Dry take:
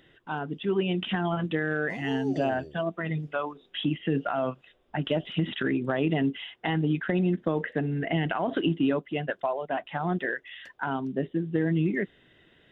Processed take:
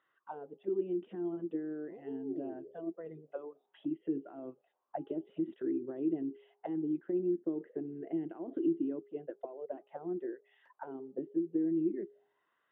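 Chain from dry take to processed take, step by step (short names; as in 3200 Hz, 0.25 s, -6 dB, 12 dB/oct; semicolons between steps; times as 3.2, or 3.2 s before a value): auto-wah 340–1200 Hz, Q 7.4, down, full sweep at -25 dBFS; de-hum 410.1 Hz, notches 3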